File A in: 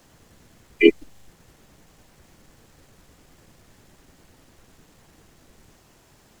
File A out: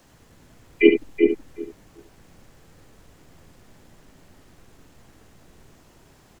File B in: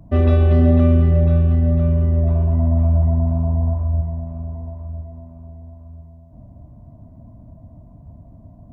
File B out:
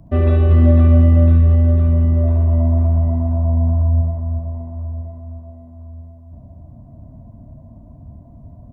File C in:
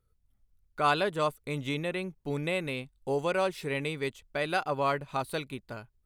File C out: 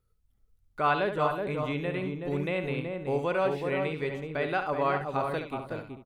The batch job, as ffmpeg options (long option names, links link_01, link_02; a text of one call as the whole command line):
ffmpeg -i in.wav -filter_complex "[0:a]asplit=2[link_01][link_02];[link_02]adelay=375,lowpass=frequency=910:poles=1,volume=-3dB,asplit=2[link_03][link_04];[link_04]adelay=375,lowpass=frequency=910:poles=1,volume=0.17,asplit=2[link_05][link_06];[link_06]adelay=375,lowpass=frequency=910:poles=1,volume=0.17[link_07];[link_03][link_05][link_07]amix=inputs=3:normalize=0[link_08];[link_01][link_08]amix=inputs=2:normalize=0,acrossover=split=3200[link_09][link_10];[link_10]acompressor=threshold=-59dB:ratio=4:attack=1:release=60[link_11];[link_09][link_11]amix=inputs=2:normalize=0,asplit=2[link_12][link_13];[link_13]aecho=0:1:70:0.376[link_14];[link_12][link_14]amix=inputs=2:normalize=0" out.wav